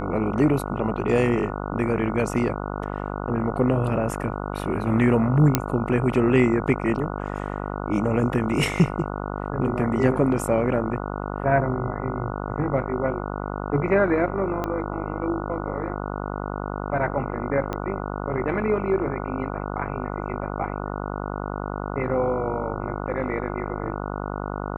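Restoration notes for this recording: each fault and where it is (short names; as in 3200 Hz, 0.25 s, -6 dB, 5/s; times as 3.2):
buzz 50 Hz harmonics 29 -30 dBFS
5.55 pop -2 dBFS
14.64 pop -14 dBFS
17.73 pop -15 dBFS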